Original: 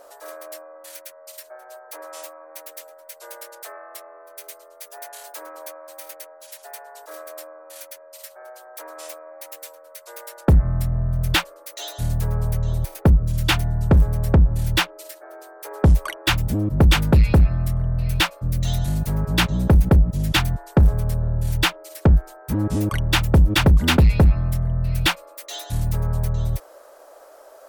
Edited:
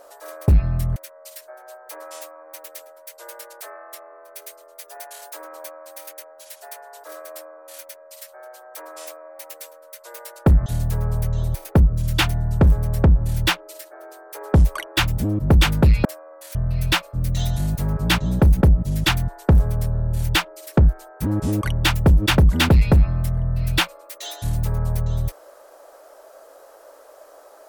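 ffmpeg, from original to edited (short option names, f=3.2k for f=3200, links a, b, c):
-filter_complex "[0:a]asplit=6[a][b][c][d][e][f];[a]atrim=end=0.482[g];[b]atrim=start=17.348:end=17.832[h];[c]atrim=start=0.978:end=10.682[i];[d]atrim=start=11.958:end=17.352[j];[e]atrim=start=0.478:end=0.982[k];[f]atrim=start=17.828[l];[g][h]acrossfade=d=0.004:c1=hsin:c2=hsin[m];[m][i]acrossfade=d=0.004:c1=hsin:c2=hsin[n];[n][j]acrossfade=d=0.004:c1=hsin:c2=hsin[o];[o][k]acrossfade=d=0.004:c1=hsin:c2=hsin[p];[p][l]acrossfade=d=0.004:c1=hsin:c2=hsin"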